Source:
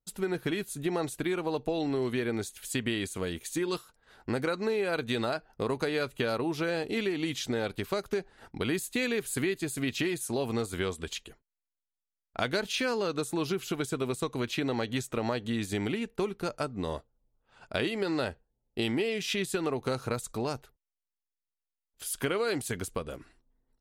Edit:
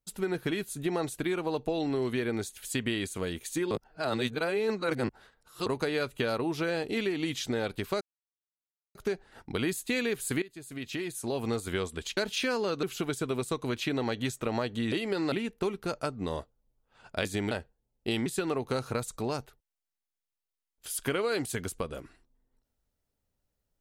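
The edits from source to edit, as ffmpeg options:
ffmpeg -i in.wav -filter_complex "[0:a]asplit=12[link_01][link_02][link_03][link_04][link_05][link_06][link_07][link_08][link_09][link_10][link_11][link_12];[link_01]atrim=end=3.712[link_13];[link_02]atrim=start=3.708:end=5.662,asetpts=PTS-STARTPTS,areverse[link_14];[link_03]atrim=start=5.658:end=8.01,asetpts=PTS-STARTPTS,afade=type=out:start_time=2.348:duration=0.004:curve=hsin,apad=pad_dur=0.94[link_15];[link_04]atrim=start=8.01:end=9.48,asetpts=PTS-STARTPTS,afade=type=in:duration=0.004:curve=hsin,afade=type=out:start_time=1.466:duration=0.004:curve=hsin:silence=0.112202[link_16];[link_05]atrim=start=9.48:end=11.232,asetpts=PTS-STARTPTS,afade=type=in:duration=1.1:silence=0.112202[link_17];[link_06]atrim=start=12.538:end=13.202[link_18];[link_07]atrim=start=13.538:end=15.632[link_19];[link_08]atrim=start=17.818:end=18.222[link_20];[link_09]atrim=start=15.888:end=17.822[link_21];[link_10]atrim=start=15.628:end=15.892[link_22];[link_11]atrim=start=18.218:end=18.972[link_23];[link_12]atrim=start=19.418[link_24];[link_13][link_14]acrossfade=duration=0.004:curve1=hsin:curve2=hsin[link_25];[link_15][link_16][link_17]concat=n=3:v=0:a=1[link_26];[link_25][link_26]acrossfade=duration=0.004:curve1=hsin:curve2=hsin[link_27];[link_27][link_18]acrossfade=duration=0.004:curve1=hsin:curve2=hsin[link_28];[link_28][link_19]acrossfade=duration=0.004:curve1=hsin:curve2=hsin[link_29];[link_29][link_20]acrossfade=duration=0.004:curve1=hsin:curve2=hsin[link_30];[link_30][link_21]acrossfade=duration=0.004:curve1=hsin:curve2=hsin[link_31];[link_31][link_22]acrossfade=duration=0.004:curve1=hsin:curve2=hsin[link_32];[link_32][link_23]acrossfade=duration=0.004:curve1=hsin:curve2=hsin[link_33];[link_33][link_24]acrossfade=duration=0.004:curve1=hsin:curve2=hsin" out.wav

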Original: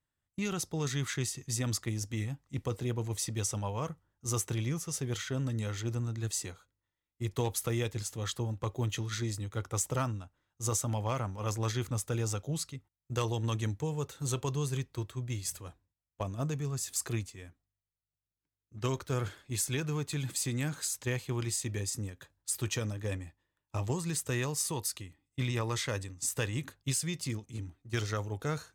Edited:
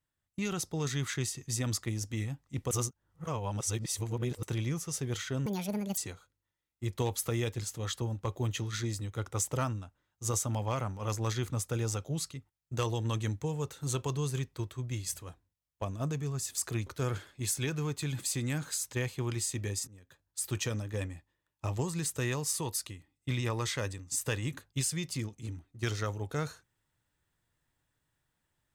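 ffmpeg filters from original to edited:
ffmpeg -i in.wav -filter_complex "[0:a]asplit=7[link_01][link_02][link_03][link_04][link_05][link_06][link_07];[link_01]atrim=end=2.712[link_08];[link_02]atrim=start=2.708:end=4.432,asetpts=PTS-STARTPTS,areverse[link_09];[link_03]atrim=start=4.428:end=5.464[link_10];[link_04]atrim=start=5.46:end=6.36,asetpts=PTS-STARTPTS,asetrate=77175,aresample=44100[link_11];[link_05]atrim=start=6.356:end=17.252[link_12];[link_06]atrim=start=18.968:end=21.98,asetpts=PTS-STARTPTS,afade=type=out:start_time=3.008:duration=0.004:curve=hsin:silence=0.0630957[link_13];[link_07]atrim=start=21.98,asetpts=PTS-STARTPTS,afade=type=in:duration=0.65:silence=0.0630957[link_14];[link_08][link_09]acrossfade=duration=0.004:curve1=hsin:curve2=hsin[link_15];[link_15][link_10]acrossfade=duration=0.004:curve1=hsin:curve2=hsin[link_16];[link_16][link_11]acrossfade=duration=0.004:curve1=hsin:curve2=hsin[link_17];[link_17][link_12]acrossfade=duration=0.004:curve1=hsin:curve2=hsin[link_18];[link_13][link_14]concat=n=2:v=0:a=1[link_19];[link_18][link_19]acrossfade=duration=0.004:curve1=hsin:curve2=hsin" out.wav

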